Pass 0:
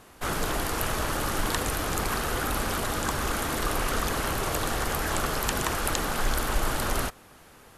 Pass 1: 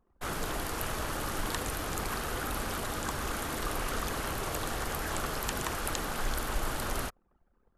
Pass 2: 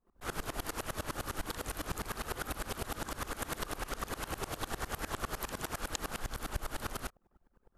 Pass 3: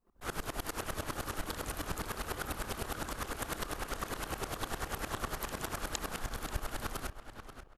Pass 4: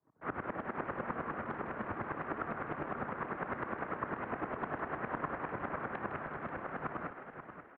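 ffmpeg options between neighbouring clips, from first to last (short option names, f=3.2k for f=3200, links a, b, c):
-af "anlmdn=0.0398,volume=-6dB"
-af "acompressor=threshold=-37dB:ratio=6,aeval=exprs='val(0)*pow(10,-23*if(lt(mod(-9.9*n/s,1),2*abs(-9.9)/1000),1-mod(-9.9*n/s,1)/(2*abs(-9.9)/1000),(mod(-9.9*n/s,1)-2*abs(-9.9)/1000)/(1-2*abs(-9.9)/1000))/20)':c=same,volume=8.5dB"
-filter_complex "[0:a]asplit=2[a][b];[b]adelay=535,lowpass=f=4.2k:p=1,volume=-9.5dB,asplit=2[c][d];[d]adelay=535,lowpass=f=4.2k:p=1,volume=0.3,asplit=2[e][f];[f]adelay=535,lowpass=f=4.2k:p=1,volume=0.3[g];[a][c][e][g]amix=inputs=4:normalize=0"
-filter_complex "[0:a]highpass=f=180:t=q:w=0.5412,highpass=f=180:t=q:w=1.307,lowpass=f=2.1k:t=q:w=0.5176,lowpass=f=2.1k:t=q:w=0.7071,lowpass=f=2.1k:t=q:w=1.932,afreqshift=-80,asplit=7[a][b][c][d][e][f][g];[b]adelay=158,afreqshift=100,volume=-11dB[h];[c]adelay=316,afreqshift=200,volume=-15.9dB[i];[d]adelay=474,afreqshift=300,volume=-20.8dB[j];[e]adelay=632,afreqshift=400,volume=-25.6dB[k];[f]adelay=790,afreqshift=500,volume=-30.5dB[l];[g]adelay=948,afreqshift=600,volume=-35.4dB[m];[a][h][i][j][k][l][m]amix=inputs=7:normalize=0,volume=2dB"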